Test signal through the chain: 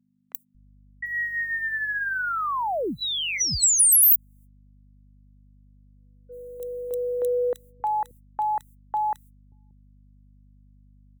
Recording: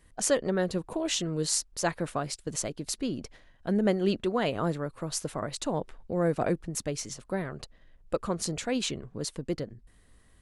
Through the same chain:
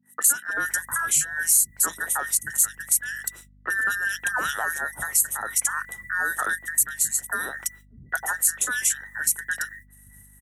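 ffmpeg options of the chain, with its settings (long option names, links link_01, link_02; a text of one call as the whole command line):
ffmpeg -i in.wav -filter_complex "[0:a]afftfilt=real='real(if(between(b,1,1012),(2*floor((b-1)/92)+1)*92-b,b),0)':imag='imag(if(between(b,1,1012),(2*floor((b-1)/92)+1)*92-b,b),0)*if(between(b,1,1012),-1,1)':win_size=2048:overlap=0.75,aexciter=amount=15.3:drive=4.7:freq=7100,agate=range=-45dB:threshold=-47dB:ratio=16:detection=peak,acompressor=threshold=-29dB:ratio=2.5,highpass=frequency=46:width=0.5412,highpass=frequency=46:width=1.3066,asoftclip=type=tanh:threshold=-12.5dB,aeval=exprs='val(0)+0.001*(sin(2*PI*50*n/s)+sin(2*PI*2*50*n/s)/2+sin(2*PI*3*50*n/s)/3+sin(2*PI*4*50*n/s)/4+sin(2*PI*5*50*n/s)/5)':channel_layout=same,acrossover=split=190|2300[link_01][link_02][link_03];[link_03]adelay=30[link_04];[link_01]adelay=580[link_05];[link_05][link_02][link_04]amix=inputs=3:normalize=0,acontrast=73" out.wav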